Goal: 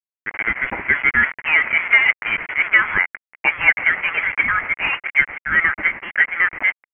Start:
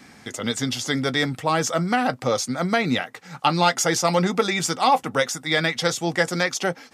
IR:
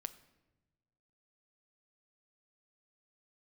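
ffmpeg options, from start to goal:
-filter_complex "[0:a]aemphasis=mode=production:type=bsi,asplit=2[a][b];[b]adelay=157,lowpass=f=2.1k:p=1,volume=-19dB,asplit=2[c][d];[d]adelay=157,lowpass=f=2.1k:p=1,volume=0.55,asplit=2[e][f];[f]adelay=157,lowpass=f=2.1k:p=1,volume=0.55,asplit=2[g][h];[h]adelay=157,lowpass=f=2.1k:p=1,volume=0.55,asplit=2[i][j];[j]adelay=157,lowpass=f=2.1k:p=1,volume=0.55[k];[a][c][e][g][i][k]amix=inputs=6:normalize=0,asplit=2[l][m];[m]aeval=exprs='(mod(3.35*val(0)+1,2)-1)/3.35':c=same,volume=-6.5dB[n];[l][n]amix=inputs=2:normalize=0,acrusher=bits=3:mix=0:aa=0.000001,highpass=f=1.5k:t=q:w=5.6,dynaudnorm=f=270:g=5:m=11.5dB,lowpass=f=3.1k:t=q:w=0.5098,lowpass=f=3.1k:t=q:w=0.6013,lowpass=f=3.1k:t=q:w=0.9,lowpass=f=3.1k:t=q:w=2.563,afreqshift=-3600,asettb=1/sr,asplit=3[o][p][q];[o]atrim=end=4.664[r];[p]atrim=start=4.66:end=5.19,asetpts=PTS-STARTPTS,afade=t=in:d=0.004:c=qsin,afade=t=out:st=0.526:d=0.004:c=qsin,aeval=exprs='0.708*(cos(1*acos(clip(val(0)/0.708,-1,1)))-cos(1*PI/2))+0.01*(cos(3*acos(clip(val(0)/0.708,-1,1)))-cos(3*PI/2))':c=same[s];[q]atrim=start=5.186[t];[r][s]acrossfade=d=0.004:c1=hsin:c2=qsin[u];[u][t]acrossfade=d=0.004:c1=qsin:c2=hsin,volume=-1dB"

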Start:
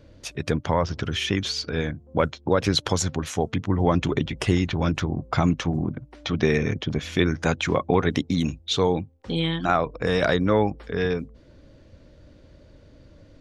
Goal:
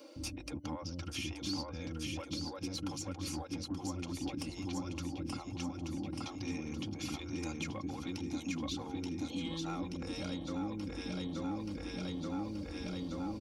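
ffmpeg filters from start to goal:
-filter_complex "[0:a]asplit=2[a][b];[b]aecho=0:1:879|1758|2637|3516|4395|5274:0.473|0.222|0.105|0.0491|0.0231|0.0109[c];[a][c]amix=inputs=2:normalize=0,alimiter=limit=-12dB:level=0:latency=1:release=194,bass=f=250:g=15,treble=f=4k:g=10,areverse,acompressor=threshold=-27dB:ratio=6,areverse,superequalizer=6b=2.82:9b=1.41:11b=0.355:13b=0.562:15b=0.631,acrossover=split=380|2600[d][e][f];[d]acompressor=threshold=-40dB:ratio=4[g];[e]acompressor=threshold=-44dB:ratio=4[h];[f]acompressor=threshold=-45dB:ratio=4[i];[g][h][i]amix=inputs=3:normalize=0,highpass=75,aecho=1:1:3.7:0.63,asoftclip=type=tanh:threshold=-29.5dB,acrossover=split=410[j][k];[j]adelay=160[l];[l][k]amix=inputs=2:normalize=0,volume=1dB"

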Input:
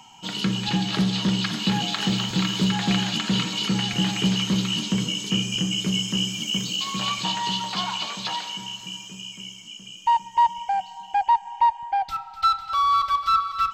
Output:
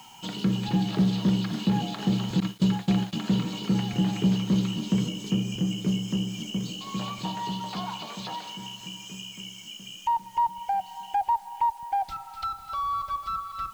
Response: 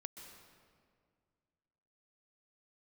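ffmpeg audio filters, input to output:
-filter_complex "[0:a]asettb=1/sr,asplit=3[a][b][c];[a]atrim=end=2.404[d];[b]atrim=start=2.4:end=3.13,asetpts=PTS-STARTPTS,afade=t=in:d=0.004:c=qsin,afade=t=out:st=0.726:d=0.004:c=qsin,agate=range=-28dB:threshold=-23dB:ratio=16:detection=peak[e];[c]atrim=start=3.126[f];[d][e]acrossfade=d=0.004:c1=hsin:c2=qsin[g];[g][f]acrossfade=d=0.004:c1=qsin:c2=hsin,acrossover=split=870[h][i];[i]acompressor=threshold=-37dB:ratio=16[j];[h][j]amix=inputs=2:normalize=0,acrusher=bits=8:mix=0:aa=0.000001"

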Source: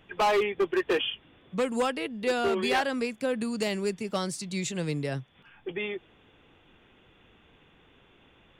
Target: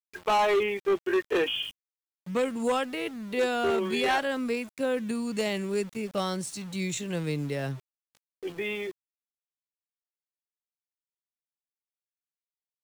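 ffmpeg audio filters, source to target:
-af "bandreject=f=4.8k:w=8.3,atempo=0.67,aeval=exprs='val(0)*gte(abs(val(0)),0.00631)':c=same"

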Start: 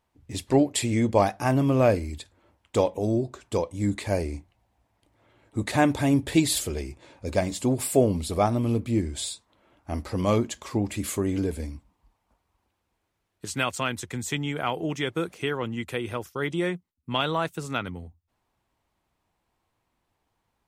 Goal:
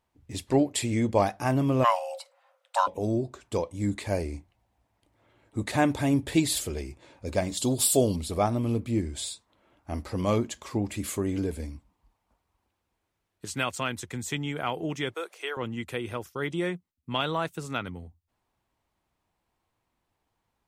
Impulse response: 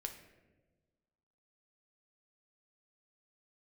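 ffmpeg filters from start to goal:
-filter_complex "[0:a]asplit=3[a][b][c];[a]afade=t=out:st=1.83:d=0.02[d];[b]afreqshift=460,afade=t=in:st=1.83:d=0.02,afade=t=out:st=2.86:d=0.02[e];[c]afade=t=in:st=2.86:d=0.02[f];[d][e][f]amix=inputs=3:normalize=0,asettb=1/sr,asplit=3[g][h][i];[g]atrim=end=7.574[j];[h]atrim=start=7.57:end=8.16,asetpts=PTS-STARTPTS,afade=t=in:d=0.004:c=qsin,afade=t=out:st=0.586:d=0.004:c=qsin,highshelf=f=2.8k:t=q:w=3:g=8.5[k];[i]atrim=start=8.156[l];[j][k]acrossfade=d=0.004:c1=hsin:c2=qsin[m];[m][l]acrossfade=d=0.004:c1=qsin:c2=hsin,asettb=1/sr,asplit=3[n][o][p];[n]atrim=end=15.144[q];[o]atrim=start=15.14:end=15.57,asetpts=PTS-STARTPTS,afade=t=in:d=0.004:c=qsin,afade=t=out:st=0.426:d=0.004:c=qsin,highpass=f=460:w=0.5412,highpass=f=460:w=1.3066[r];[p]atrim=start=15.566[s];[q][r]acrossfade=d=0.004:c1=hsin:c2=qsin[t];[t][s]acrossfade=d=0.004:c1=qsin:c2=hsin,volume=-2.5dB"

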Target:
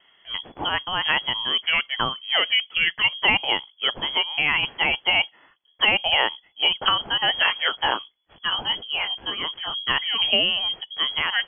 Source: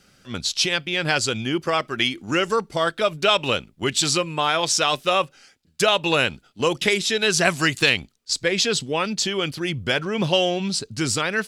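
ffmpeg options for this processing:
-filter_complex "[0:a]asplit=3[a][b][c];[a]afade=t=out:st=7.45:d=0.02[d];[b]flanger=delay=15.5:depth=6.3:speed=1.4,afade=t=in:st=7.45:d=0.02,afade=t=out:st=9.74:d=0.02[e];[c]afade=t=in:st=9.74:d=0.02[f];[d][e][f]amix=inputs=3:normalize=0,lowpass=f=2.9k:t=q:w=0.5098,lowpass=f=2.9k:t=q:w=0.6013,lowpass=f=2.9k:t=q:w=0.9,lowpass=f=2.9k:t=q:w=2.563,afreqshift=-3400"

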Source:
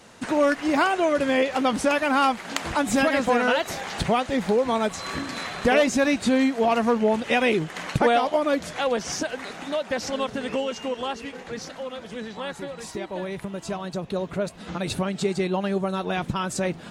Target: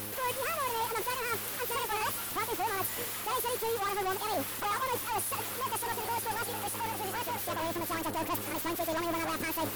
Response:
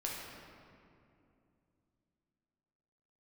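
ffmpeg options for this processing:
-filter_complex "[0:a]aeval=exprs='val(0)+0.02*(sin(2*PI*60*n/s)+sin(2*PI*2*60*n/s)/2+sin(2*PI*3*60*n/s)/3+sin(2*PI*4*60*n/s)/4+sin(2*PI*5*60*n/s)/5)':c=same,asetrate=76440,aresample=44100,areverse,acompressor=threshold=-28dB:ratio=6,areverse,highshelf=f=2.9k:g=-9,agate=range=-12dB:threshold=-31dB:ratio=16:detection=peak,aexciter=amount=15.6:drive=9.2:freq=9.2k,asplit=2[a][b];[b]highpass=f=720:p=1,volume=36dB,asoftclip=type=tanh:threshold=-25.5dB[c];[a][c]amix=inputs=2:normalize=0,lowpass=f=5.9k:p=1,volume=-6dB,volume=-1.5dB"

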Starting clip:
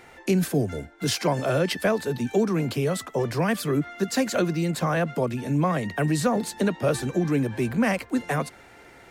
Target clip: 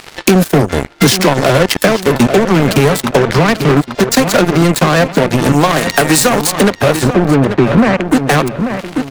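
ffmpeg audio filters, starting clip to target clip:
-filter_complex "[0:a]asettb=1/sr,asplit=3[a][b][c];[a]atrim=end=3.174[d];[b]atrim=start=3.17:end=3.77,asetpts=PTS-STARTPTS,afade=t=in:d=0.004:c=qsin,afade=t=out:st=0.596:d=0.004:c=qsin,lowpass=5.1k[e];[c]atrim=start=3.766[f];[d][e]acrossfade=d=0.004:c1=hsin:c2=qsin[g];[g][f]acrossfade=d=0.004:c1=qsin:c2=hsin,asettb=1/sr,asplit=3[h][i][j];[h]atrim=end=5.524[k];[i]atrim=start=5.52:end=6.47,asetpts=PTS-STARTPTS,afade=t=in:d=0.004:c=qsin,afade=t=out:st=0.946:d=0.004:c=qsin,bass=f=250:g=-11,treble=f=4k:g=8[l];[j]atrim=start=6.466[m];[k][l]acrossfade=d=0.004:c1=hsin:c2=qsin[n];[n][m]acrossfade=d=0.004:c1=qsin:c2=hsin,acompressor=threshold=-35dB:ratio=12,volume=34dB,asoftclip=hard,volume=-34dB,aeval=exprs='0.0211*(cos(1*acos(clip(val(0)/0.0211,-1,1)))-cos(1*PI/2))+0.0075*(cos(3*acos(clip(val(0)/0.0211,-1,1)))-cos(3*PI/2))':c=same,asettb=1/sr,asplit=3[o][p][q];[o]atrim=end=7.054[r];[p]atrim=start=7.05:end=8.07,asetpts=PTS-STARTPTS,afade=t=in:d=0.004:c=qsin,afade=t=out:st=1.016:d=0.004:c=qsin,adynamicsmooth=sensitivity=4:basefreq=1.5k[s];[q]atrim=start=8.066[t];[r][s]acrossfade=d=0.004:c1=hsin:c2=qsin[u];[u][t]acrossfade=d=0.004:c1=qsin:c2=hsin,asplit=2[v][w];[w]adelay=839,lowpass=f=3.8k:p=1,volume=-12dB,asplit=2[x][y];[y]adelay=839,lowpass=f=3.8k:p=1,volume=0.32,asplit=2[z][aa];[aa]adelay=839,lowpass=f=3.8k:p=1,volume=0.32[ab];[v][x][z][ab]amix=inputs=4:normalize=0,alimiter=level_in=36dB:limit=-1dB:release=50:level=0:latency=1,volume=-1dB"

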